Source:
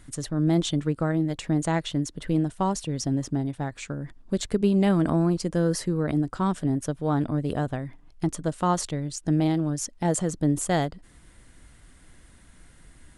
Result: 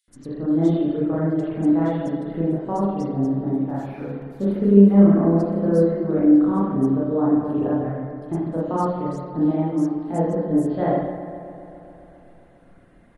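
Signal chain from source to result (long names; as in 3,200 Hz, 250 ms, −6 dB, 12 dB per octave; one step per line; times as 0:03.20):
0:03.69–0:05.04: linear delta modulator 64 kbit/s, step −40 dBFS
dynamic equaliser 3,300 Hz, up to −5 dB, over −44 dBFS, Q 0.8
multiband delay without the direct sound highs, lows 80 ms, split 3,200 Hz
spring reverb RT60 1.2 s, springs 30/50 ms, chirp 30 ms, DRR −8 dB
reverb reduction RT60 0.55 s
octave-band graphic EQ 250/500/1,000/8,000 Hz +9/+7/+3/−8 dB
on a send: bucket-brigade delay 134 ms, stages 2,048, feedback 77%, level −12 dB
on the sum: level −10.5 dB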